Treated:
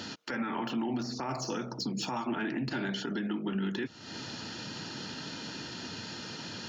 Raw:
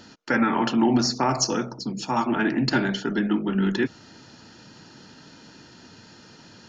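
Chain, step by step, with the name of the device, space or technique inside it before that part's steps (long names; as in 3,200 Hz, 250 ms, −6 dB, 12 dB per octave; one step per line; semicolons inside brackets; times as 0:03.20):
broadcast voice chain (high-pass filter 72 Hz; de-essing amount 85%; downward compressor 5 to 1, threshold −37 dBFS, peak gain reduction 19 dB; parametric band 3,300 Hz +5 dB 1.1 octaves; brickwall limiter −30.5 dBFS, peak gain reduction 8.5 dB)
level +6 dB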